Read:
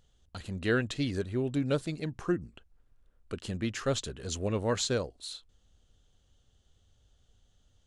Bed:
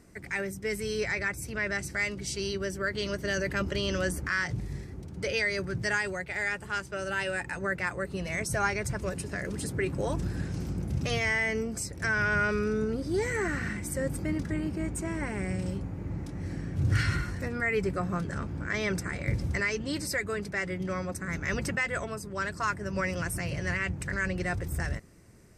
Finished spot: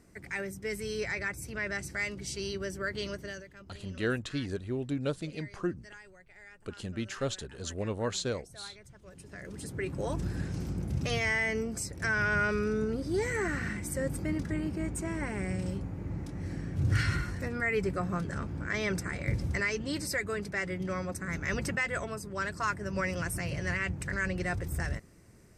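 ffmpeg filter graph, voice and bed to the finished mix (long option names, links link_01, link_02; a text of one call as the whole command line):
ffmpeg -i stem1.wav -i stem2.wav -filter_complex "[0:a]adelay=3350,volume=-3dB[link_01];[1:a]volume=17dB,afade=type=out:start_time=3.02:duration=0.45:silence=0.11885,afade=type=in:start_time=9.03:duration=1.26:silence=0.0944061[link_02];[link_01][link_02]amix=inputs=2:normalize=0" out.wav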